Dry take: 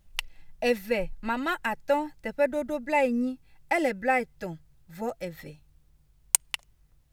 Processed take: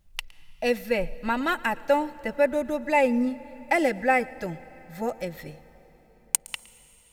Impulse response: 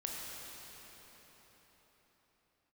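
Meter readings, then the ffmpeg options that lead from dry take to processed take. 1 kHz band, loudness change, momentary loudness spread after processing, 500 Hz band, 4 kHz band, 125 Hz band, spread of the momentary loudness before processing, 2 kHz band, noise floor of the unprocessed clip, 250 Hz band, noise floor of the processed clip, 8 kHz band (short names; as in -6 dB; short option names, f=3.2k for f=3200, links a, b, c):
+3.0 dB, +2.5 dB, 16 LU, +2.5 dB, 0.0 dB, +3.0 dB, 14 LU, +2.5 dB, -63 dBFS, +3.0 dB, -58 dBFS, -2.0 dB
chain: -filter_complex "[0:a]dynaudnorm=f=260:g=5:m=5dB,asplit=2[a][b];[1:a]atrim=start_sample=2205,adelay=113[c];[b][c]afir=irnorm=-1:irlink=0,volume=-20dB[d];[a][d]amix=inputs=2:normalize=0,volume=-2dB"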